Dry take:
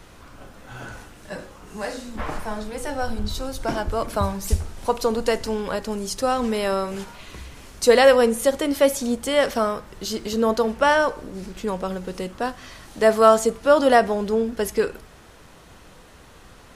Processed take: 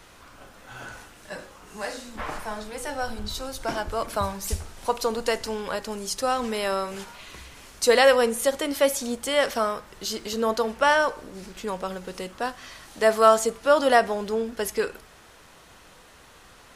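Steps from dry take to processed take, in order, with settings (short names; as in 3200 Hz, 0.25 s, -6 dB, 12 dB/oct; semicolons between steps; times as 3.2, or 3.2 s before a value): low shelf 470 Hz -8.5 dB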